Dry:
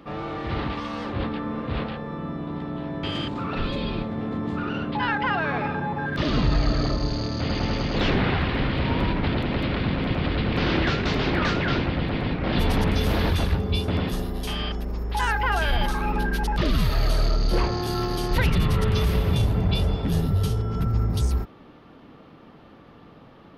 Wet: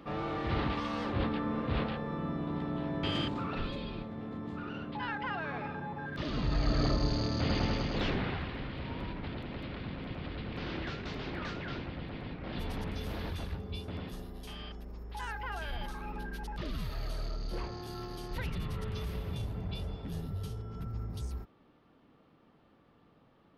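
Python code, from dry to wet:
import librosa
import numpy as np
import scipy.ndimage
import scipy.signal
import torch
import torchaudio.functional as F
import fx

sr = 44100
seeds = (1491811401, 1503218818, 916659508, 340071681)

y = fx.gain(x, sr, db=fx.line((3.22, -4.0), (3.87, -12.0), (6.36, -12.0), (6.85, -4.5), (7.56, -4.5), (8.62, -15.5)))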